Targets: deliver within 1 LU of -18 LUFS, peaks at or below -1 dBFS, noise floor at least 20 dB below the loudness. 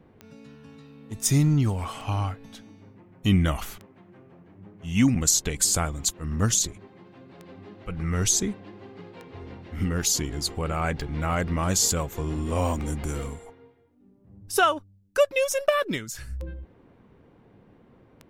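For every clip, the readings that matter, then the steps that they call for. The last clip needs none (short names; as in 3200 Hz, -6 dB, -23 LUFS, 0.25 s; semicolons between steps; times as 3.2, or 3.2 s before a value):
clicks 11; loudness -25.0 LUFS; peak -6.5 dBFS; loudness target -18.0 LUFS
-> de-click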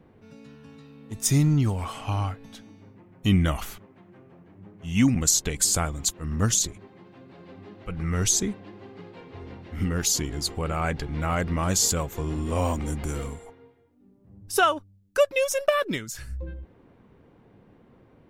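clicks 0; loudness -25.0 LUFS; peak -6.5 dBFS; loudness target -18.0 LUFS
-> gain +7 dB; limiter -1 dBFS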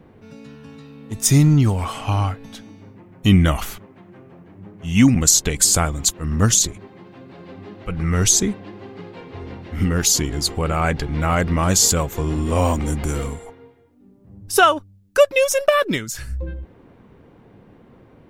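loudness -18.0 LUFS; peak -1.0 dBFS; noise floor -50 dBFS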